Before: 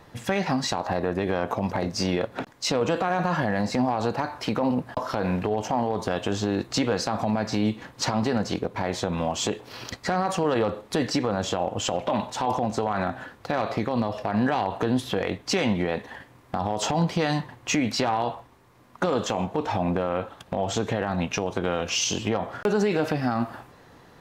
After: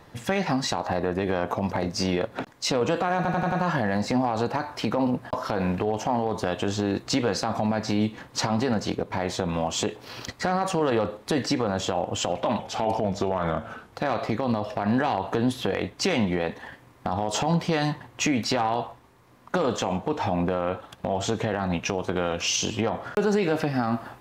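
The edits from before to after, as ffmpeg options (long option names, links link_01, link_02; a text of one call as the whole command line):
ffmpeg -i in.wav -filter_complex "[0:a]asplit=7[link_01][link_02][link_03][link_04][link_05][link_06][link_07];[link_01]atrim=end=3.252[link_08];[link_02]atrim=start=3.158:end=3.252[link_09];[link_03]atrim=start=3.158:end=3.252[link_10];[link_04]atrim=start=3.158:end=3.252[link_11];[link_05]atrim=start=3.158:end=12.234[link_12];[link_06]atrim=start=12.23:end=13.4,asetpts=PTS-STARTPTS,asetrate=38808,aresample=44100[link_13];[link_07]atrim=start=13.396[link_14];[link_08][link_09]acrossfade=duration=0.004:curve1=hsin:curve2=hsin[link_15];[link_15][link_10]acrossfade=duration=0.004:curve1=hsin:curve2=hsin[link_16];[link_16][link_11]acrossfade=duration=0.004:curve1=hsin:curve2=hsin[link_17];[link_17][link_12]acrossfade=duration=0.004:curve1=hsin:curve2=hsin[link_18];[link_18][link_13]acrossfade=duration=0.004:curve1=hsin:curve2=hsin[link_19];[link_19][link_14]acrossfade=duration=0.004:curve1=hsin:curve2=hsin" out.wav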